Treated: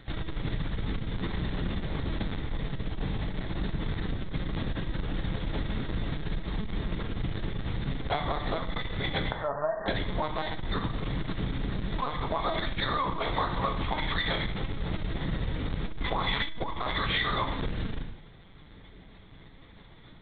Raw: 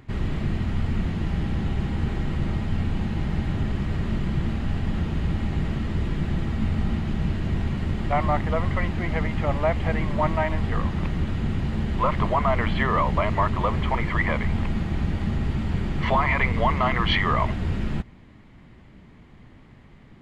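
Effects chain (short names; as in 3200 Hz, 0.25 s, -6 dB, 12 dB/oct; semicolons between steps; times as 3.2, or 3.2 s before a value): 15.84–16.81 octaver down 2 oct, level +3 dB; careless resampling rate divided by 8×, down filtered, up zero stuff; 9.31–9.88 brick-wall FIR band-pass 340–1900 Hz; LPC vocoder at 8 kHz pitch kept; low shelf 440 Hz -4 dB; non-linear reverb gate 0.22 s falling, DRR 4.5 dB; compressor 5:1, threshold -25 dBFS, peak gain reduction 10.5 dB; core saturation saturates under 94 Hz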